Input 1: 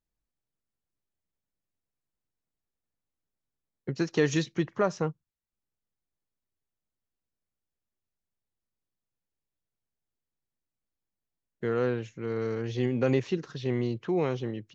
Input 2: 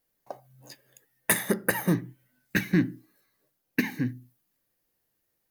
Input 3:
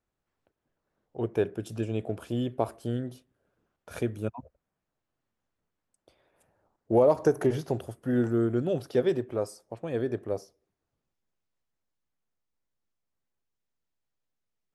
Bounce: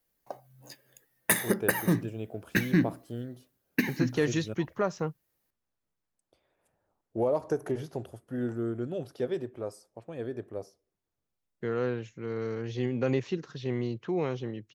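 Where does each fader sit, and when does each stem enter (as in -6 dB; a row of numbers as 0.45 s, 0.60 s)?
-2.5 dB, -1.0 dB, -6.5 dB; 0.00 s, 0.00 s, 0.25 s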